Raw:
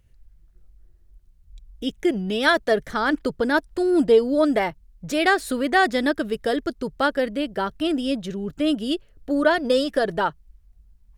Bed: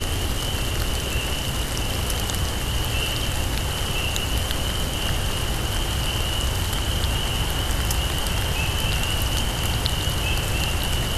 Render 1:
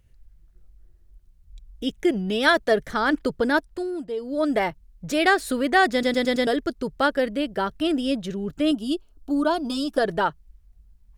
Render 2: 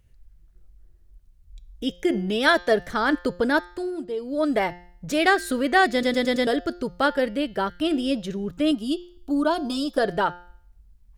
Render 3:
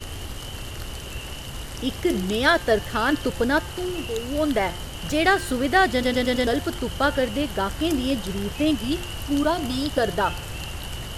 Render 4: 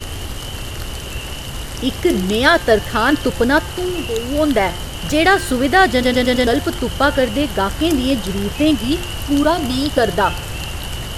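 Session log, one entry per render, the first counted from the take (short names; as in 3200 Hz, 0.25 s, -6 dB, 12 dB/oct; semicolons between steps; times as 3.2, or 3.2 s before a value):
3.5–4.66 dip -14.5 dB, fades 0.50 s; 5.92 stutter in place 0.11 s, 5 plays; 8.71–9.98 fixed phaser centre 510 Hz, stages 6
de-hum 176.3 Hz, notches 40
add bed -9.5 dB
gain +7 dB; limiter -1 dBFS, peak gain reduction 2 dB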